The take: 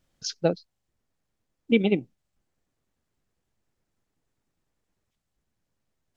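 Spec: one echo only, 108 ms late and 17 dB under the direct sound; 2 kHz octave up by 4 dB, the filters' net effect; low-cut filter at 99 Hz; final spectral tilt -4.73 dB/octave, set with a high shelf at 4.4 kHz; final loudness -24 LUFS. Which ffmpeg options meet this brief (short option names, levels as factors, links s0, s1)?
-af "highpass=99,equalizer=f=2000:t=o:g=4,highshelf=f=4400:g=4,aecho=1:1:108:0.141,volume=1.19"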